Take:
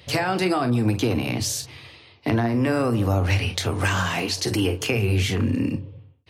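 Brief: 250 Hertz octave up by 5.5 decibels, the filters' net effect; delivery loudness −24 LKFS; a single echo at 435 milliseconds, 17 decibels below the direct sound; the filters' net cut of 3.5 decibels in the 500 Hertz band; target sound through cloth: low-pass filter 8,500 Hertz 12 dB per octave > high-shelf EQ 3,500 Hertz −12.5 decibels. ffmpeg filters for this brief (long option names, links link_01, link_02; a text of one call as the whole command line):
ffmpeg -i in.wav -af "lowpass=8500,equalizer=frequency=250:width_type=o:gain=9,equalizer=frequency=500:width_type=o:gain=-9,highshelf=frequency=3500:gain=-12.5,aecho=1:1:435:0.141,volume=-3dB" out.wav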